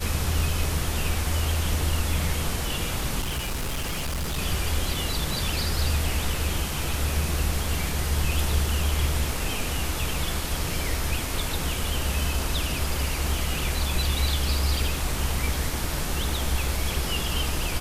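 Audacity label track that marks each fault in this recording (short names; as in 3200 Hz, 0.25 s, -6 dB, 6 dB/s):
3.200000	4.390000	clipped -25 dBFS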